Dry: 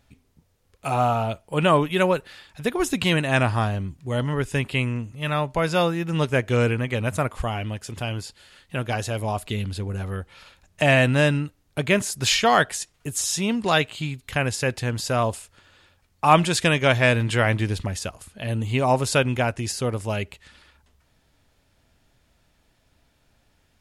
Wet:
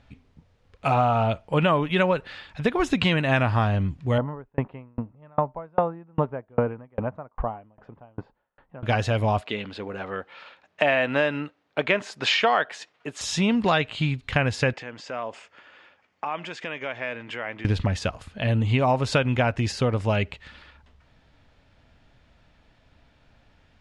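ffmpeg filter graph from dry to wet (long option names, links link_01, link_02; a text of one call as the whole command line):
ffmpeg -i in.wav -filter_complex "[0:a]asettb=1/sr,asplit=3[link_01][link_02][link_03];[link_01]atrim=end=4.184[link_04];[link_02]atrim=start=4.18:end=8.83,asetpts=PTS-STARTPTS,afade=type=in:duration=0.004:curve=qsin,afade=type=out:start_time=4.646:duration=0.004:curve=qsin,lowpass=frequency=930:width_type=q:width=1.7,equalizer=frequency=85:width_type=o:width=0.65:gain=-14,aeval=exprs='val(0)*pow(10,-38*if(lt(mod(2.5*n/s,1),2*abs(2.5)/1000),1-mod(2.5*n/s,1)/(2*abs(2.5)/1000),(mod(2.5*n/s,1)-2*abs(2.5)/1000)/(1-2*abs(2.5)/1000))/20)':channel_layout=same[link_05];[link_03]atrim=start=8.826[link_06];[link_04][link_05]acrossfade=duration=0.004:curve1=hsin:curve2=qsin[link_07];[link_07][link_06]acrossfade=duration=0.004:curve1=qsin:curve2=hsin,asettb=1/sr,asplit=3[link_08][link_09][link_10];[link_08]atrim=end=9.414[link_11];[link_09]atrim=start=9.41:end=13.21,asetpts=PTS-STARTPTS,afade=type=in:duration=0.004:curve=qsin,afade=type=out:start_time=3.796:duration=0.004:curve=qsin,highpass=360,aemphasis=mode=reproduction:type=50fm[link_12];[link_10]atrim=start=13.206[link_13];[link_11][link_12]acrossfade=duration=0.004:curve1=hsin:curve2=qsin[link_14];[link_14][link_13]acrossfade=duration=0.004:curve1=qsin:curve2=hsin,asettb=1/sr,asplit=3[link_15][link_16][link_17];[link_15]atrim=end=14.734[link_18];[link_16]atrim=start=14.73:end=17.65,asetpts=PTS-STARTPTS,afade=type=in:duration=0.004:curve=qsin,afade=type=out:start_time=2.916:duration=0.004:curve=qsin,acompressor=threshold=-33dB:ratio=5:attack=3.2:release=140:knee=1:detection=peak,highpass=320,equalizer=frequency=2100:width_type=q:width=4:gain=3,equalizer=frequency=4000:width_type=q:width=4:gain=-9,equalizer=frequency=5600:width_type=q:width=4:gain=-3,lowpass=frequency=7000:width=0.5412,lowpass=frequency=7000:width=1.3066[link_19];[link_17]atrim=start=17.646[link_20];[link_18][link_19]acrossfade=duration=0.004:curve1=hsin:curve2=qsin[link_21];[link_21][link_20]acrossfade=duration=0.004:curve1=qsin:curve2=hsin,lowpass=3600,equalizer=frequency=370:width_type=o:width=0.29:gain=-4.5,acompressor=threshold=-23dB:ratio=6,volume=5.5dB" out.wav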